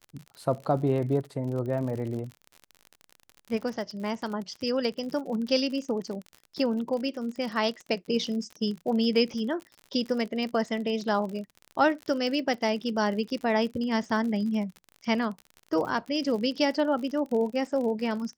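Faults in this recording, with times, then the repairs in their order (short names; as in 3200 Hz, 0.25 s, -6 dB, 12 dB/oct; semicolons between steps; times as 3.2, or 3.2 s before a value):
crackle 52/s -34 dBFS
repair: de-click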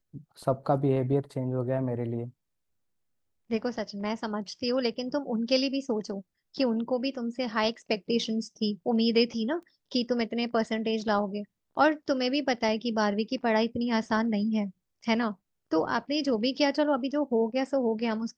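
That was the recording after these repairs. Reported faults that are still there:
none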